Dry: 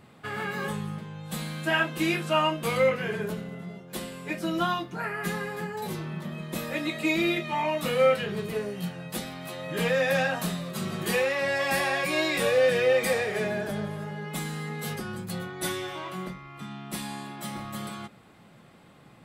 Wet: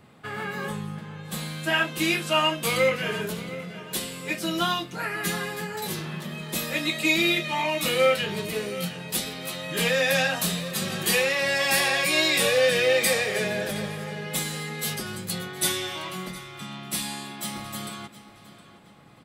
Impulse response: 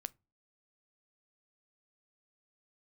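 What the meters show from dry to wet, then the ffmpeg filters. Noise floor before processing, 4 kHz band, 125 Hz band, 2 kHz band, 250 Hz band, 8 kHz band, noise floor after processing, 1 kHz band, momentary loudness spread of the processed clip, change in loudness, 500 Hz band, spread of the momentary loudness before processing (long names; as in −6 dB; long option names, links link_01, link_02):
−54 dBFS, +8.0 dB, 0.0 dB, +4.0 dB, 0.0 dB, +9.5 dB, −51 dBFS, +0.5 dB, 14 LU, +3.0 dB, 0.0 dB, 14 LU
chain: -filter_complex "[0:a]acrossover=split=360|2500[link_01][link_02][link_03];[link_03]dynaudnorm=framelen=410:gausssize=9:maxgain=10dB[link_04];[link_01][link_02][link_04]amix=inputs=3:normalize=0,asplit=2[link_05][link_06];[link_06]adelay=715,lowpass=frequency=4800:poles=1,volume=-15dB,asplit=2[link_07][link_08];[link_08]adelay=715,lowpass=frequency=4800:poles=1,volume=0.4,asplit=2[link_09][link_10];[link_10]adelay=715,lowpass=frequency=4800:poles=1,volume=0.4,asplit=2[link_11][link_12];[link_12]adelay=715,lowpass=frequency=4800:poles=1,volume=0.4[link_13];[link_05][link_07][link_09][link_11][link_13]amix=inputs=5:normalize=0"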